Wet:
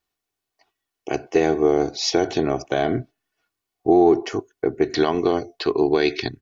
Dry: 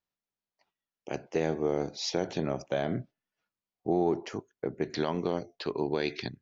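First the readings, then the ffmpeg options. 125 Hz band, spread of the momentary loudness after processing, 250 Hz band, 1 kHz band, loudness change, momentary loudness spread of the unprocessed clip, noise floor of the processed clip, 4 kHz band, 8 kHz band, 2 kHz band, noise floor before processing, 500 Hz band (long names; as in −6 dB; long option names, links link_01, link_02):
+5.0 dB, 11 LU, +11.0 dB, +11.5 dB, +11.0 dB, 11 LU, −84 dBFS, +10.0 dB, can't be measured, +10.5 dB, below −85 dBFS, +11.5 dB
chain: -af "aecho=1:1:2.7:0.61,volume=9dB"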